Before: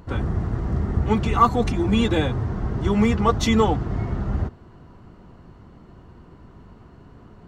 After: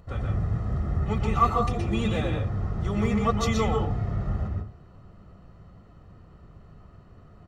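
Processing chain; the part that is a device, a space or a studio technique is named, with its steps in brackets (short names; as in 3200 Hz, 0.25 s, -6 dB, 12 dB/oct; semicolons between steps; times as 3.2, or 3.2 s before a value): microphone above a desk (comb 1.6 ms, depth 57%; reverb RT60 0.35 s, pre-delay 0.117 s, DRR 1.5 dB); gain -8 dB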